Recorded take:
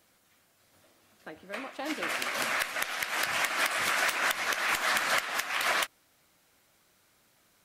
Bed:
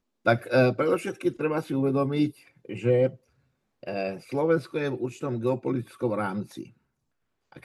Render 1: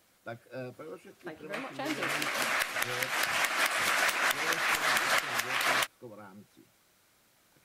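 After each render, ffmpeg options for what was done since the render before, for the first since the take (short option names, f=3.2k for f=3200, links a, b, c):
-filter_complex "[1:a]volume=-20.5dB[a];[0:a][a]amix=inputs=2:normalize=0"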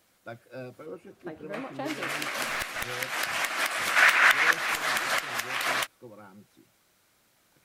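-filter_complex "[0:a]asettb=1/sr,asplit=3[a][b][c];[a]atrim=end=0.864[d];[b]atrim=start=0.86:end=1.88,asetpts=PTS-STARTPTS,afade=t=in:d=0.004:c=qsin,afade=t=out:st=1.016:d=0.004:c=qsin,tiltshelf=f=1.2k:g=5[e];[c]atrim=start=1.876[f];[d][e]acrossfade=d=0.004:c1=hsin:c2=qsin[g];[g][f]acrossfade=d=0.004:c1=qsin:c2=hsin,asettb=1/sr,asplit=3[h][i][j];[h]atrim=end=2.454[k];[i]atrim=start=2.45:end=2.86,asetpts=PTS-STARTPTS,afade=t=in:d=0.004:c=qsin,afade=t=out:st=0.406:d=0.004:c=qsin,aeval=exprs='clip(val(0),-1,0.0316)':c=same[l];[j]atrim=start=2.856[m];[k][l]acrossfade=d=0.004:c1=hsin:c2=qsin[n];[n][m]acrossfade=d=0.004:c1=qsin:c2=hsin,asettb=1/sr,asplit=3[o][p][q];[o]atrim=end=3.964[r];[p]atrim=start=3.96:end=4.51,asetpts=PTS-STARTPTS,afade=t=in:d=0.004:c=qsin,afade=t=out:st=0.546:d=0.004:c=qsin,equalizer=f=1.8k:w=0.7:g=11[s];[q]atrim=start=4.506[t];[r][s]acrossfade=d=0.004:c1=hsin:c2=qsin[u];[u][t]acrossfade=d=0.004:c1=qsin:c2=hsin"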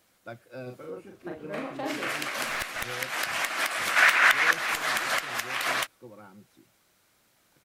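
-filter_complex "[0:a]asplit=3[a][b][c];[a]afade=t=out:st=0.66:d=0.02[d];[b]asplit=2[e][f];[f]adelay=40,volume=-3dB[g];[e][g]amix=inputs=2:normalize=0,afade=t=in:st=0.66:d=0.02,afade=t=out:st=2.11:d=0.02[h];[c]afade=t=in:st=2.11:d=0.02[i];[d][h][i]amix=inputs=3:normalize=0"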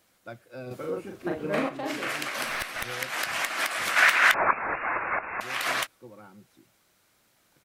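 -filter_complex "[0:a]asettb=1/sr,asplit=3[a][b][c];[a]atrim=end=2.384[d];[b]atrim=start=2.38:end=2.92,asetpts=PTS-STARTPTS,afade=t=in:d=0.004:c=qsin,afade=t=out:st=0.536:d=0.004:c=qsin,bandreject=f=7k:w=9.1[e];[c]atrim=start=2.916[f];[d][e]acrossfade=d=0.004:c1=hsin:c2=qsin[g];[g][f]acrossfade=d=0.004:c1=qsin:c2=hsin,asettb=1/sr,asplit=3[h][i][j];[h]atrim=end=4.344[k];[i]atrim=start=4.34:end=5.41,asetpts=PTS-STARTPTS,afade=t=in:d=0.004:c=qsin,afade=t=out:st=1.066:d=0.004:c=qsin,lowpass=f=2.4k:t=q:w=0.5098,lowpass=f=2.4k:t=q:w=0.6013,lowpass=f=2.4k:t=q:w=0.9,lowpass=f=2.4k:t=q:w=2.563,afreqshift=-2800[l];[j]atrim=start=5.406[m];[k][l]acrossfade=d=0.004:c1=hsin:c2=qsin[n];[n][m]acrossfade=d=0.004:c1=qsin:c2=hsin,asplit=3[o][p][q];[o]atrim=end=0.712[r];[p]atrim=start=0.708:end=1.692,asetpts=PTS-STARTPTS,volume=7.5dB[s];[q]atrim=start=1.688[t];[r][s]acrossfade=d=0.004:c1=hsin:c2=hsin[u];[u][t]acrossfade=d=0.004:c1=hsin:c2=hsin"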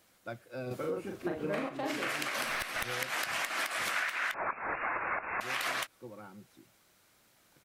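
-af "acompressor=threshold=-30dB:ratio=16"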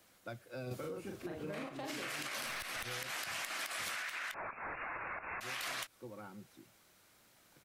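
-filter_complex "[0:a]alimiter=level_in=3.5dB:limit=-24dB:level=0:latency=1:release=33,volume=-3.5dB,acrossover=split=150|3000[a][b][c];[b]acompressor=threshold=-46dB:ratio=2[d];[a][d][c]amix=inputs=3:normalize=0"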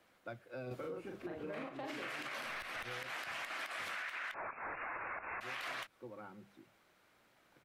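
-af "bass=f=250:g=-4,treble=f=4k:g=-13,bandreject=f=50:t=h:w=6,bandreject=f=100:t=h:w=6,bandreject=f=150:t=h:w=6,bandreject=f=200:t=h:w=6"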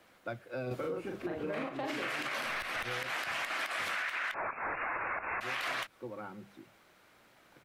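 -af "volume=7dB"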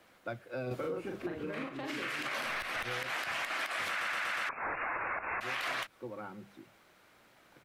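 -filter_complex "[0:a]asettb=1/sr,asplit=3[a][b][c];[a]atrim=end=1.294[d];[b]atrim=start=1.29:end=2.23,asetpts=PTS-STARTPTS,afade=t=in:d=0.004:c=qsin,afade=t=out:st=0.936:d=0.004:c=qsin,equalizer=f=700:w=1.7:g=-8[e];[c]atrim=start=2.226[f];[d][e]acrossfade=d=0.004:c1=hsin:c2=qsin[g];[g][f]acrossfade=d=0.004:c1=qsin:c2=hsin,asplit=6[h][i][j][k][l][m];[h]atrim=end=4.012[n];[i]atrim=start=3.888:end=4.012[o];[j]atrim=start=3.888:end=4.012[p];[k]atrim=start=3.888:end=4.012[q];[l]atrim=start=3.888:end=4.012[r];[m]atrim=start=4.488[s];[n][o]acrossfade=d=0.004:c1=hsin:c2=hsin[t];[t][p]acrossfade=d=0.004:c1=hsin:c2=hsin[u];[u][q]acrossfade=d=0.004:c1=hsin:c2=hsin[v];[v][r]acrossfade=d=0.004:c1=hsin:c2=hsin[w];[w][s]acrossfade=d=0.004:c1=hsin:c2=hsin"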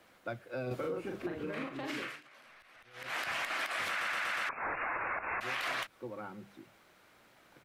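-filter_complex "[0:a]asplit=3[a][b][c];[a]atrim=end=2.21,asetpts=PTS-STARTPTS,afade=t=out:st=1.97:d=0.24:silence=0.0794328[d];[b]atrim=start=2.21:end=2.93,asetpts=PTS-STARTPTS,volume=-22dB[e];[c]atrim=start=2.93,asetpts=PTS-STARTPTS,afade=t=in:d=0.24:silence=0.0794328[f];[d][e][f]concat=n=3:v=0:a=1"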